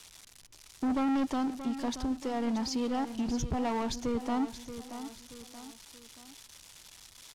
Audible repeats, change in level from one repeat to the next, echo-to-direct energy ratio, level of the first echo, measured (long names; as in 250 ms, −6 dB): 3, −7.0 dB, −10.5 dB, −11.5 dB